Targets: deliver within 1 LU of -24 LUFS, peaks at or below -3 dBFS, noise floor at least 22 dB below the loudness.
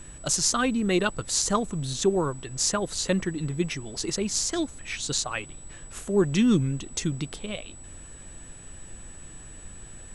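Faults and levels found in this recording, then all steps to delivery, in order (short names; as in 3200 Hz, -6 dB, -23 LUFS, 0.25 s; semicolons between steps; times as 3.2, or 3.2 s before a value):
steady tone 7900 Hz; tone level -46 dBFS; noise floor -45 dBFS; noise floor target -49 dBFS; loudness -26.5 LUFS; peak -6.5 dBFS; loudness target -24.0 LUFS
-> notch 7900 Hz, Q 30; noise print and reduce 6 dB; gain +2.5 dB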